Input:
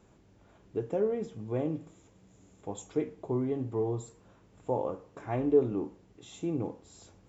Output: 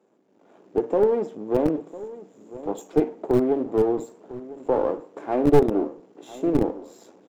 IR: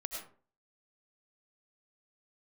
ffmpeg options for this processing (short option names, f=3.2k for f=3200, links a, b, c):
-filter_complex "[0:a]aeval=exprs='if(lt(val(0),0),0.251*val(0),val(0))':c=same,acrossover=split=260[a][b];[a]acrusher=bits=4:mix=0:aa=0.000001[c];[c][b]amix=inputs=2:normalize=0,dynaudnorm=f=280:g=3:m=11.5dB,asoftclip=type=tanh:threshold=-14dB,tiltshelf=f=830:g=8,asplit=2[d][e];[e]adelay=1001,lowpass=f=2k:p=1,volume=-16.5dB,asplit=2[f][g];[g]adelay=1001,lowpass=f=2k:p=1,volume=0.38,asplit=2[h][i];[i]adelay=1001,lowpass=f=2k:p=1,volume=0.38[j];[f][h][j]amix=inputs=3:normalize=0[k];[d][k]amix=inputs=2:normalize=0"